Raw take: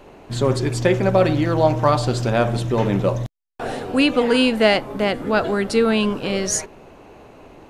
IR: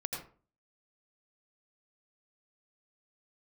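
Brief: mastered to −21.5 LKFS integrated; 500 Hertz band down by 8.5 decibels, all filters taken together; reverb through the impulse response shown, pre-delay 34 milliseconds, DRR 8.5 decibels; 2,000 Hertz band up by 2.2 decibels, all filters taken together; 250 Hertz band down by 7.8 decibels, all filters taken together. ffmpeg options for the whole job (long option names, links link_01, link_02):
-filter_complex "[0:a]equalizer=frequency=250:width_type=o:gain=-7.5,equalizer=frequency=500:width_type=o:gain=-9,equalizer=frequency=2000:width_type=o:gain=3.5,asplit=2[link_01][link_02];[1:a]atrim=start_sample=2205,adelay=34[link_03];[link_02][link_03]afir=irnorm=-1:irlink=0,volume=-10.5dB[link_04];[link_01][link_04]amix=inputs=2:normalize=0,volume=0.5dB"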